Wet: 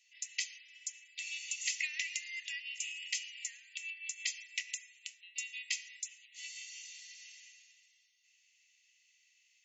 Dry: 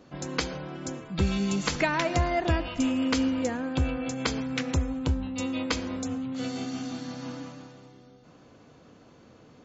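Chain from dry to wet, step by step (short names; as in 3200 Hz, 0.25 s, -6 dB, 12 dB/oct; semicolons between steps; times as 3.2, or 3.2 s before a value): rippled Chebyshev high-pass 1900 Hz, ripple 9 dB; gain +1.5 dB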